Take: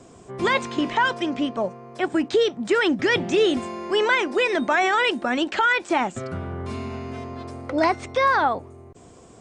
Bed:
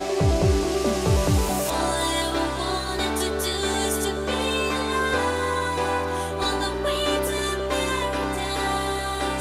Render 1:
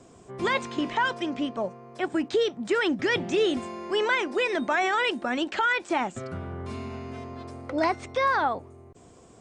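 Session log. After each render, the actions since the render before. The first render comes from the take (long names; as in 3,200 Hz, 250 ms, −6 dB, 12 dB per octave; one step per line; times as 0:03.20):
level −4.5 dB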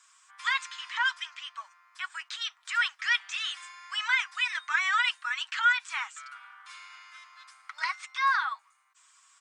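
Butterworth high-pass 1,100 Hz 48 dB per octave
comb filter 6.3 ms, depth 52%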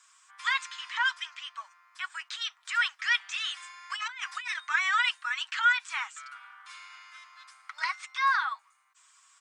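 0:03.90–0:04.60: compressor whose output falls as the input rises −37 dBFS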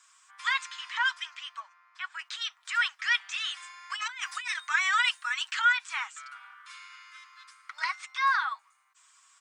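0:01.60–0:02.19: high-frequency loss of the air 110 metres
0:04.01–0:05.62: high-shelf EQ 7,100 Hz +11 dB
0:06.54–0:07.71: Butterworth high-pass 1,000 Hz 48 dB per octave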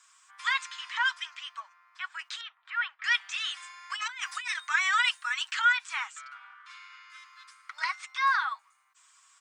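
0:02.41–0:03.04: high-frequency loss of the air 460 metres
0:06.21–0:07.10: high-frequency loss of the air 90 metres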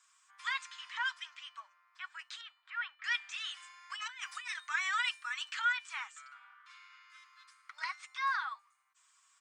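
tuned comb filter 600 Hz, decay 0.55 s, mix 60%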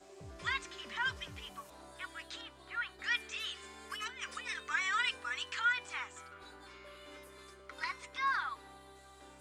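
mix in bed −30.5 dB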